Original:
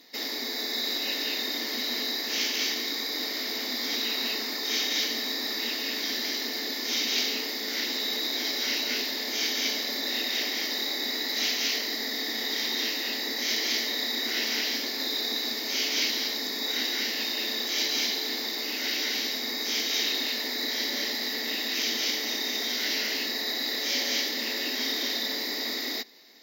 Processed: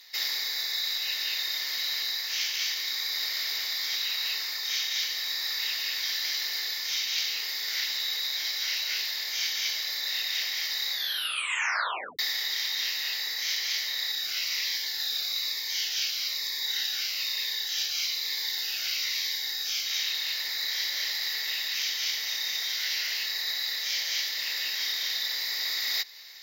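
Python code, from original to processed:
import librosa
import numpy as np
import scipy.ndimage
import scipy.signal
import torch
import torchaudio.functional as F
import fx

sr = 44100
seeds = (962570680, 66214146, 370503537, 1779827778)

y = fx.notch_cascade(x, sr, direction='falling', hz=1.1, at=(14.11, 19.85), fade=0.02)
y = fx.edit(y, sr, fx.tape_stop(start_s=10.92, length_s=1.27), tone=tone)
y = scipy.signal.sosfilt(scipy.signal.butter(2, 1400.0, 'highpass', fs=sr, output='sos'), y)
y = fx.rider(y, sr, range_db=10, speed_s=0.5)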